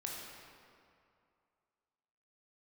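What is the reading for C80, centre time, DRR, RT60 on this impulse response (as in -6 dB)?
1.5 dB, 113 ms, -2.5 dB, 2.4 s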